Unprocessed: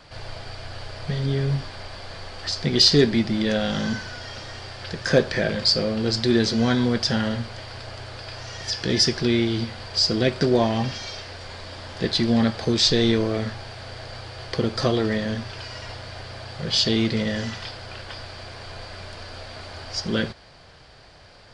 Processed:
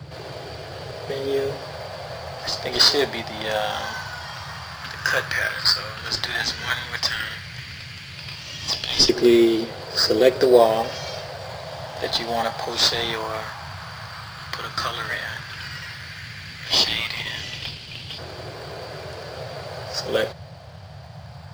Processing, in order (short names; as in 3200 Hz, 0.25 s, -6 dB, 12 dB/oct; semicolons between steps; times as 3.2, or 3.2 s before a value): LFO high-pass saw up 0.11 Hz 340–3000 Hz; in parallel at -10 dB: decimation with a swept rate 14×, swing 60% 0.35 Hz; on the sum: pre-echo 70 ms -19 dB; band noise 75–160 Hz -41 dBFS